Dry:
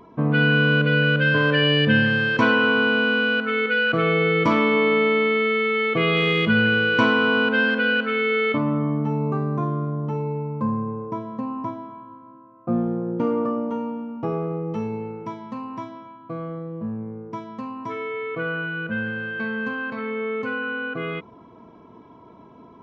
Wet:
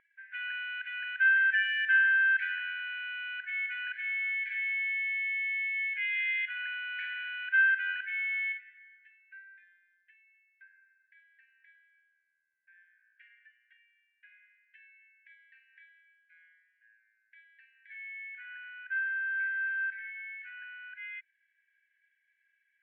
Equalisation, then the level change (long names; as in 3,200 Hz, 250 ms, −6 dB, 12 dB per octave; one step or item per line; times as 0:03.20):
linear-phase brick-wall high-pass 1,500 Hz
low-pass filter 2,000 Hz 24 dB per octave
high-frequency loss of the air 120 metres
0.0 dB